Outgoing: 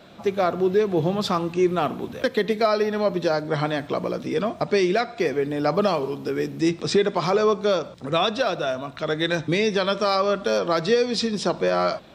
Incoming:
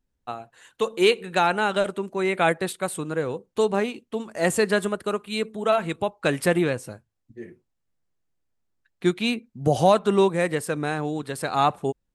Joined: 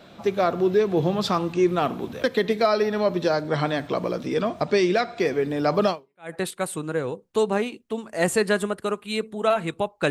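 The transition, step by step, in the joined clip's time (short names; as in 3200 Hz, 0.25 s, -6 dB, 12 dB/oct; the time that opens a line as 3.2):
outgoing
6.12 switch to incoming from 2.34 s, crossfade 0.44 s exponential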